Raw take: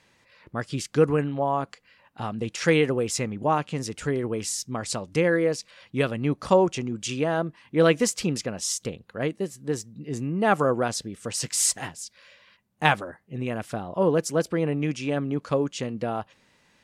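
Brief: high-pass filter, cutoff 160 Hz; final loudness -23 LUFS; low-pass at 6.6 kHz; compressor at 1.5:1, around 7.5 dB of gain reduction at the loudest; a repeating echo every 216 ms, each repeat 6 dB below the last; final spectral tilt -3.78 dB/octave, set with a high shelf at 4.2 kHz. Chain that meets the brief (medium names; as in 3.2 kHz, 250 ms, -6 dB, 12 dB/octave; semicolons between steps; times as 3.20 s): high-pass 160 Hz; low-pass 6.6 kHz; treble shelf 4.2 kHz +5 dB; compression 1.5:1, threshold -35 dBFS; feedback delay 216 ms, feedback 50%, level -6 dB; trim +7.5 dB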